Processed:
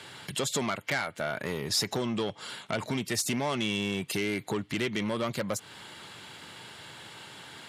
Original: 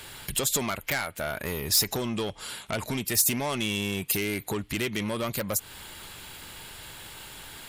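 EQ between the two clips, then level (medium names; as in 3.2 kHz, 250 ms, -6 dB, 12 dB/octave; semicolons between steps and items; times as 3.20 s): high-pass 110 Hz 24 dB/octave; distance through air 70 m; band-stop 2.5 kHz, Q 18; 0.0 dB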